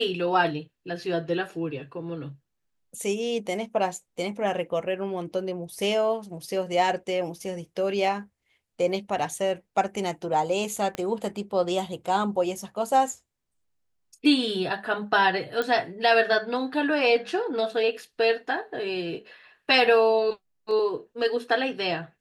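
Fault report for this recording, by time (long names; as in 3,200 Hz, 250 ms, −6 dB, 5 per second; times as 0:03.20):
0:10.95: click −17 dBFS
0:15.62: click −15 dBFS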